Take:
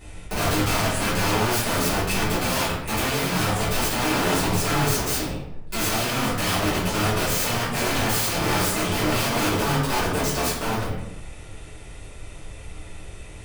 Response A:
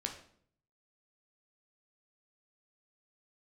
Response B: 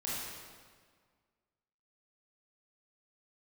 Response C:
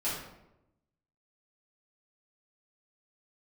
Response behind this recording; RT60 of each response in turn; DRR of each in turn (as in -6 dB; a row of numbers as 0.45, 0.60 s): C; 0.60, 1.7, 0.90 s; 2.5, -8.0, -11.5 dB